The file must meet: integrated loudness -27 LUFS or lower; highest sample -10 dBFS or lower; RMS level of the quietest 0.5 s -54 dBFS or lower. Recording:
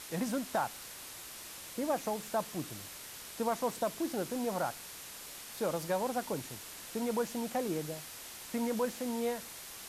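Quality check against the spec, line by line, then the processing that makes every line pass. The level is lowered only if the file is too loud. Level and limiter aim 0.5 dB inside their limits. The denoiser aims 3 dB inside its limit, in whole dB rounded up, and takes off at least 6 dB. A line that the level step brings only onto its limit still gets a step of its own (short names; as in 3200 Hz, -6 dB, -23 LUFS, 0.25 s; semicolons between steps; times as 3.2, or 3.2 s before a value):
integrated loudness -36.5 LUFS: OK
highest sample -21.0 dBFS: OK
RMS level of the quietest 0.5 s -47 dBFS: fail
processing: denoiser 10 dB, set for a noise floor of -47 dBFS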